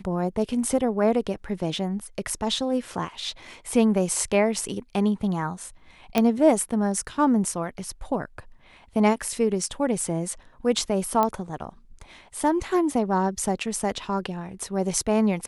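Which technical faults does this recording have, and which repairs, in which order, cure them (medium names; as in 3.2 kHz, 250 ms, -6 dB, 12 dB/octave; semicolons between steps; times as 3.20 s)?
6.18 s: pop -7 dBFS
11.23 s: pop -10 dBFS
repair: de-click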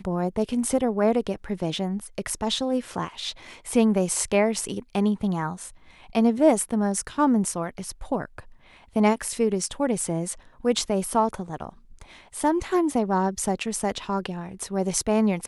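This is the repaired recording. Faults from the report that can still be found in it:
nothing left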